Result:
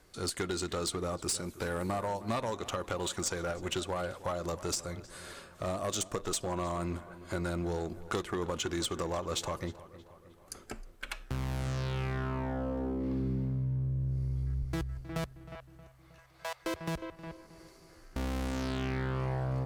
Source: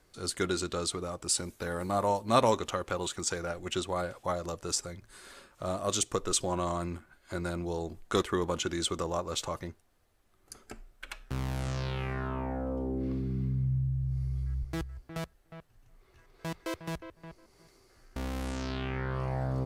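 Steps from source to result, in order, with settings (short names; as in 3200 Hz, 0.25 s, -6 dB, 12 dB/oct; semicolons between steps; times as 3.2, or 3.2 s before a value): 15.55–16.65 steep high-pass 530 Hz 48 dB/oct; compressor 6:1, threshold -33 dBFS, peak gain reduction 14 dB; one-sided clip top -32 dBFS; on a send: darkening echo 0.314 s, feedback 58%, low-pass 2900 Hz, level -16 dB; on the sum: gain +3.5 dB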